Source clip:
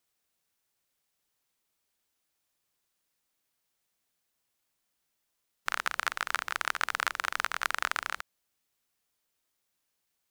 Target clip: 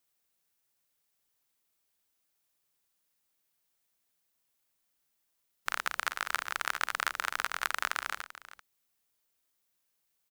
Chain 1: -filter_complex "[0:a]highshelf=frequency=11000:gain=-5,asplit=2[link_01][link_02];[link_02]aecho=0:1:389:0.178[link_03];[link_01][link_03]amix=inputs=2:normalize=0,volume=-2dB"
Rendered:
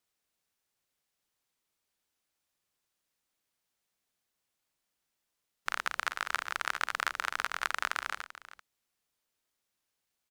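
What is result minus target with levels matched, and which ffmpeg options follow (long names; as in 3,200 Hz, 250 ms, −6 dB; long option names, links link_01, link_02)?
8,000 Hz band −2.5 dB
-filter_complex "[0:a]highshelf=frequency=11000:gain=6.5,asplit=2[link_01][link_02];[link_02]aecho=0:1:389:0.178[link_03];[link_01][link_03]amix=inputs=2:normalize=0,volume=-2dB"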